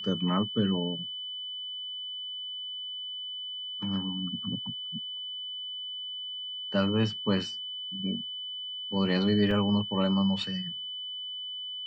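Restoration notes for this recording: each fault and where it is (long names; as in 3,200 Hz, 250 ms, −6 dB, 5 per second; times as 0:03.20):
whistle 3,000 Hz −35 dBFS
0:09.51: drop-out 2.8 ms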